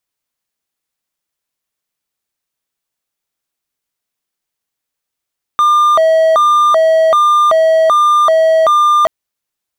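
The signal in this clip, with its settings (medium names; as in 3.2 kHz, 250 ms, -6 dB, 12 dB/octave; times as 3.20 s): siren hi-lo 644–1200 Hz 1.3 per s triangle -4.5 dBFS 3.48 s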